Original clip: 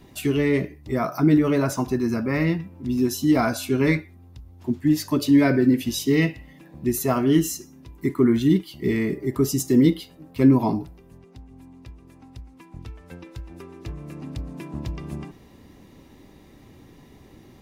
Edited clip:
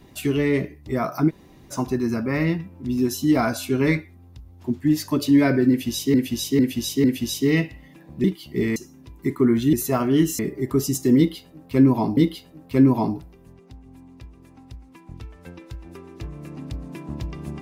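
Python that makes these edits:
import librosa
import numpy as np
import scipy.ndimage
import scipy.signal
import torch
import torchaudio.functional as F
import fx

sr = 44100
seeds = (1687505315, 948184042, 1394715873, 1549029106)

y = fx.edit(x, sr, fx.room_tone_fill(start_s=1.29, length_s=0.43, crossfade_s=0.04),
    fx.repeat(start_s=5.69, length_s=0.45, count=4),
    fx.swap(start_s=6.89, length_s=0.66, other_s=8.52, other_length_s=0.52),
    fx.repeat(start_s=9.82, length_s=1.0, count=2), tone=tone)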